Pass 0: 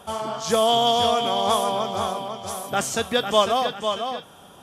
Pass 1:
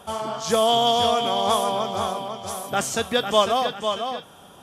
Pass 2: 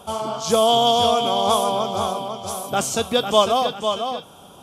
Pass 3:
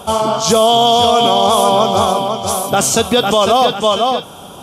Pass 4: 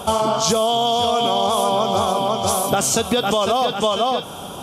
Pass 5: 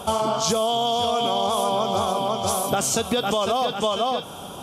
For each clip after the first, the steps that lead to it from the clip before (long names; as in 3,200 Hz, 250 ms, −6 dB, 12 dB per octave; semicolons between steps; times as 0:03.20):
no processing that can be heard
parametric band 1,800 Hz −12 dB 0.44 octaves; level +3 dB
boost into a limiter +12.5 dB; level −1.5 dB
downward compressor, threshold −17 dBFS, peak gain reduction 9.5 dB; level +1.5 dB
level −4 dB; Ogg Vorbis 192 kbit/s 48,000 Hz